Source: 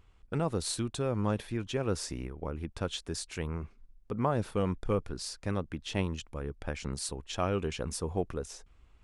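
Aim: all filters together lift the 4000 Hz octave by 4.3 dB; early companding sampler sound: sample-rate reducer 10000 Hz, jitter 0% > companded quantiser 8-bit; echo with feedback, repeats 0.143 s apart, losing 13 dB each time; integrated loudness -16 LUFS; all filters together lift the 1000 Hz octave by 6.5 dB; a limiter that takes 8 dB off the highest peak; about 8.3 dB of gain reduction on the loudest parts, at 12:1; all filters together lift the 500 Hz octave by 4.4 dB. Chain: bell 500 Hz +3.5 dB; bell 1000 Hz +7 dB; bell 4000 Hz +5 dB; compressor 12:1, threshold -28 dBFS; limiter -25 dBFS; feedback echo 0.143 s, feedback 22%, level -13 dB; sample-rate reducer 10000 Hz, jitter 0%; companded quantiser 8-bit; gain +21 dB

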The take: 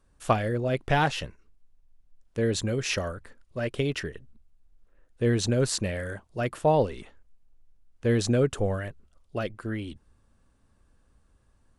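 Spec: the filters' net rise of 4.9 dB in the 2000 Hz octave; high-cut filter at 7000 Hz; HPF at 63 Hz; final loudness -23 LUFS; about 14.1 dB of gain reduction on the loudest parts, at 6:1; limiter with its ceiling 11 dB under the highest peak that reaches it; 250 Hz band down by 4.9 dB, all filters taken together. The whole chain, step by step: HPF 63 Hz; LPF 7000 Hz; bell 250 Hz -6.5 dB; bell 2000 Hz +6.5 dB; compressor 6:1, threshold -33 dBFS; gain +17.5 dB; limiter -12 dBFS

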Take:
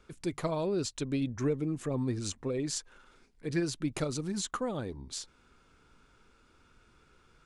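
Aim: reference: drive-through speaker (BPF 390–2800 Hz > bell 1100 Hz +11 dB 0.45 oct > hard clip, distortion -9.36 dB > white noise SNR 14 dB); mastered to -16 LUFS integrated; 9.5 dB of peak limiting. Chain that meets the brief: limiter -29 dBFS; BPF 390–2800 Hz; bell 1100 Hz +11 dB 0.45 oct; hard clip -37.5 dBFS; white noise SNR 14 dB; gain +28 dB

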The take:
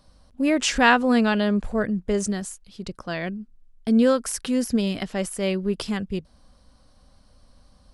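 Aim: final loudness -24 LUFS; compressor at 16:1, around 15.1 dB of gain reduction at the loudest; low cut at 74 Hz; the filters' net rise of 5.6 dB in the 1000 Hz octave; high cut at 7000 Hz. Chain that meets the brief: HPF 74 Hz; LPF 7000 Hz; bell 1000 Hz +7 dB; compressor 16:1, threshold -22 dBFS; gain +4.5 dB

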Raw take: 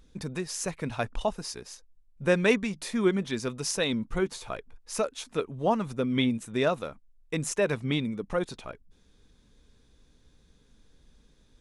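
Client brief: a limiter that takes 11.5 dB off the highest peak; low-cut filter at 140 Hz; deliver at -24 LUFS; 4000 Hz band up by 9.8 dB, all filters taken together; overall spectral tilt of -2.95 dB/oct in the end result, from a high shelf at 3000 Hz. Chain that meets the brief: HPF 140 Hz; high shelf 3000 Hz +6.5 dB; bell 4000 Hz +7 dB; gain +5 dB; limiter -10.5 dBFS

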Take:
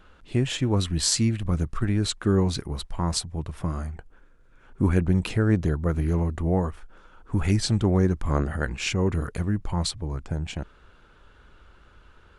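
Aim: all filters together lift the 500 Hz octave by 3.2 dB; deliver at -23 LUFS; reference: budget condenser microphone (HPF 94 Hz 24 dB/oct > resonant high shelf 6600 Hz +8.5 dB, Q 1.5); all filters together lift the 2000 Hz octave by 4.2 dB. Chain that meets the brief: HPF 94 Hz 24 dB/oct; bell 500 Hz +4 dB; bell 2000 Hz +6 dB; resonant high shelf 6600 Hz +8.5 dB, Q 1.5; gain +1.5 dB

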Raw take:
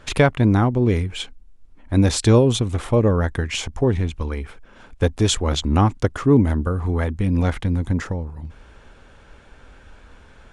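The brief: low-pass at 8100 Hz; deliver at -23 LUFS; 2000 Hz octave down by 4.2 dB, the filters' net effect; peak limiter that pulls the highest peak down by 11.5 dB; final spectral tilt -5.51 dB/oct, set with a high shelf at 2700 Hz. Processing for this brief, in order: LPF 8100 Hz; bell 2000 Hz -8.5 dB; high shelf 2700 Hz +6.5 dB; gain +3 dB; limiter -13 dBFS

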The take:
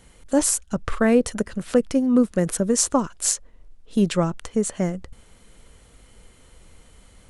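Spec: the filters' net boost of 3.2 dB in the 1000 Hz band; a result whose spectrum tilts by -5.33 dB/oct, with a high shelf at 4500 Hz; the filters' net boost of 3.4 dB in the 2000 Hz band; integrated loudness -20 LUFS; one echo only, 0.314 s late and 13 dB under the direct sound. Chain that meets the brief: bell 1000 Hz +3.5 dB; bell 2000 Hz +4.5 dB; high shelf 4500 Hz -9 dB; echo 0.314 s -13 dB; gain +2.5 dB

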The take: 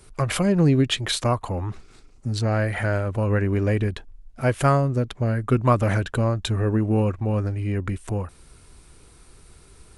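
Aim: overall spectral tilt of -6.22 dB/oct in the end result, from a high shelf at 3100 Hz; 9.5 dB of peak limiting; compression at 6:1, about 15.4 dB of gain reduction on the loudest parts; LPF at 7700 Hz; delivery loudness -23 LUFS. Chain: LPF 7700 Hz; high shelf 3100 Hz -4.5 dB; compressor 6:1, threshold -31 dBFS; gain +13.5 dB; limiter -14.5 dBFS

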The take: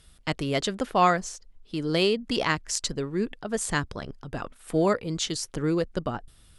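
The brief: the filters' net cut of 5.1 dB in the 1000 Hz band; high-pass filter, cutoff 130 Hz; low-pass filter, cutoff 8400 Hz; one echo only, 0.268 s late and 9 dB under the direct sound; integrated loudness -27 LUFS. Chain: HPF 130 Hz; LPF 8400 Hz; bell 1000 Hz -7 dB; echo 0.268 s -9 dB; gain +1.5 dB

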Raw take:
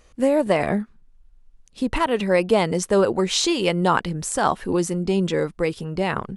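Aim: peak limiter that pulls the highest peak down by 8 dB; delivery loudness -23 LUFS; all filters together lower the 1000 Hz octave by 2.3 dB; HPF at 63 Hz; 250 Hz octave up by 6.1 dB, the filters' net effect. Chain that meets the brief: HPF 63 Hz; bell 250 Hz +9 dB; bell 1000 Hz -3.5 dB; gain -1.5 dB; limiter -12.5 dBFS

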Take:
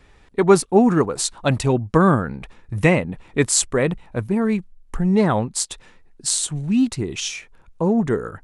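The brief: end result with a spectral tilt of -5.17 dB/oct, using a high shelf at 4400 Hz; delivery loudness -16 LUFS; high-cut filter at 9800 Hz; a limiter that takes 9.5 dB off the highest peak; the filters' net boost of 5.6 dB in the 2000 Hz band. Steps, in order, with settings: LPF 9800 Hz; bell 2000 Hz +8 dB; high shelf 4400 Hz -6.5 dB; gain +6.5 dB; limiter -3.5 dBFS

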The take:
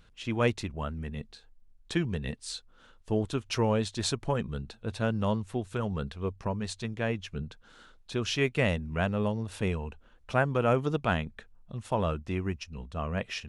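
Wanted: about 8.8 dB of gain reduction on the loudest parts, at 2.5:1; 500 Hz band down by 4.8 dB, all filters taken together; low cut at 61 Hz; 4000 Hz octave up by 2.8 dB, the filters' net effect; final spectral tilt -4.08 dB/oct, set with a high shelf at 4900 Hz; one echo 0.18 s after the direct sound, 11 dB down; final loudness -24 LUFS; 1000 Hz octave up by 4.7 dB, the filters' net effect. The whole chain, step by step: HPF 61 Hz; bell 500 Hz -8.5 dB; bell 1000 Hz +8.5 dB; bell 4000 Hz +6 dB; high shelf 4900 Hz -6.5 dB; compressor 2.5:1, threshold -33 dBFS; echo 0.18 s -11 dB; gain +12.5 dB

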